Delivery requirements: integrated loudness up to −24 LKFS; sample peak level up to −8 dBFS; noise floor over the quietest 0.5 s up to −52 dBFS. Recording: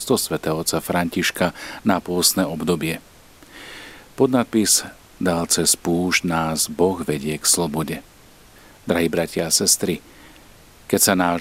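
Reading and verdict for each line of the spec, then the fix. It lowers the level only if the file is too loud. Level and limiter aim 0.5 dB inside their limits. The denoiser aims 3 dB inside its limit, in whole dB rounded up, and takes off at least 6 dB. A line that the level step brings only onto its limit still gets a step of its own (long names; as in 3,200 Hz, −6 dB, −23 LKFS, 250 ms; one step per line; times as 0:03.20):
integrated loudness −19.5 LKFS: out of spec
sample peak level −2.5 dBFS: out of spec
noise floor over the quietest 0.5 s −48 dBFS: out of spec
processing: level −5 dB
brickwall limiter −8.5 dBFS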